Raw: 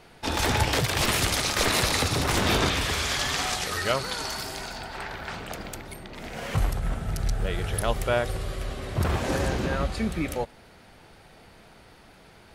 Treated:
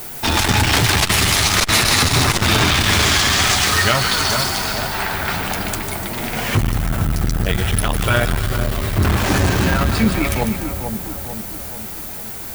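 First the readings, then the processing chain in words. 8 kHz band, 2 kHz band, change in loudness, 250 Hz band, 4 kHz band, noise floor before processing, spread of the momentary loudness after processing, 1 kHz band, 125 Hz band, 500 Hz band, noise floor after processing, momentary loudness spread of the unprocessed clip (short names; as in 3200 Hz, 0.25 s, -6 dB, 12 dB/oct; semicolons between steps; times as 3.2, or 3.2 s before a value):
+11.0 dB, +11.0 dB, +10.0 dB, +10.5 dB, +11.0 dB, -52 dBFS, 12 LU, +9.5 dB, +11.0 dB, +5.5 dB, -30 dBFS, 13 LU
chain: notch 510 Hz, Q 12; dynamic EQ 490 Hz, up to -6 dB, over -41 dBFS, Q 0.88; flange 0.47 Hz, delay 8 ms, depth 2.9 ms, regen -28%; added noise violet -49 dBFS; on a send: split-band echo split 1200 Hz, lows 0.444 s, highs 0.148 s, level -7.5 dB; on the sum: maximiser +19.5 dB; core saturation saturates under 190 Hz; gain -2.5 dB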